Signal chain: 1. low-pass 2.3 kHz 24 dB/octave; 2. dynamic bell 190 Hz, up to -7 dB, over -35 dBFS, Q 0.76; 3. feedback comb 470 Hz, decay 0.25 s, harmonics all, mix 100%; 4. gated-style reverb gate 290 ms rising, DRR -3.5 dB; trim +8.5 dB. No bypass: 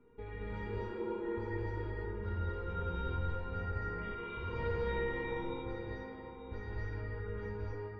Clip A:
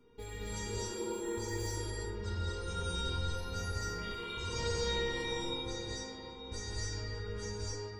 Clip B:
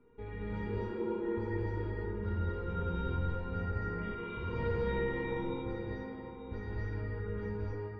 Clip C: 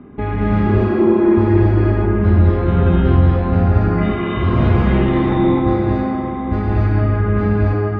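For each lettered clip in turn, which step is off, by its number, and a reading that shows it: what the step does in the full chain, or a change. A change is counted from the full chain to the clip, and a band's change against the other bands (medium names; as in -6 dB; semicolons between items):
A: 1, 4 kHz band +17.0 dB; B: 2, loudness change +2.5 LU; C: 3, 250 Hz band +9.5 dB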